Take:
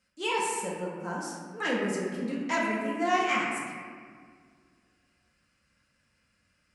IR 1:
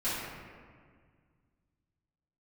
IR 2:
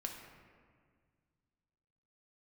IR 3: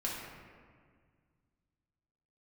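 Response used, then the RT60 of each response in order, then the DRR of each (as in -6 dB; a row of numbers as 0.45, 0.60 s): 3; 1.8, 1.8, 1.8 s; -13.5, 1.5, -5.0 dB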